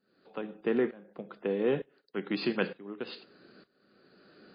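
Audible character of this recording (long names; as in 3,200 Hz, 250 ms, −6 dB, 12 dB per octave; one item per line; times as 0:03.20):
tremolo saw up 1.1 Hz, depth 95%
MP3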